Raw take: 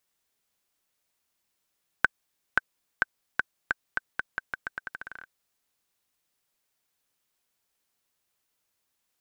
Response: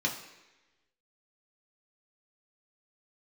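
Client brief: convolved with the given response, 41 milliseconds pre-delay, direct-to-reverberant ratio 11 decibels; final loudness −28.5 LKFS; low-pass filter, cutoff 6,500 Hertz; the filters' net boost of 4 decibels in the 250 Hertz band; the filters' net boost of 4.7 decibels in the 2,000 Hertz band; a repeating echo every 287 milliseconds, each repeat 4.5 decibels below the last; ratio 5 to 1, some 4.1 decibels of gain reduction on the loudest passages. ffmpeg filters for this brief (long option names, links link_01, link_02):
-filter_complex "[0:a]lowpass=6500,equalizer=frequency=250:width_type=o:gain=5,equalizer=frequency=2000:width_type=o:gain=7,acompressor=threshold=-19dB:ratio=5,aecho=1:1:287|574|861|1148|1435|1722|2009|2296|2583:0.596|0.357|0.214|0.129|0.0772|0.0463|0.0278|0.0167|0.01,asplit=2[link_01][link_02];[1:a]atrim=start_sample=2205,adelay=41[link_03];[link_02][link_03]afir=irnorm=-1:irlink=0,volume=-18dB[link_04];[link_01][link_04]amix=inputs=2:normalize=0,volume=1.5dB"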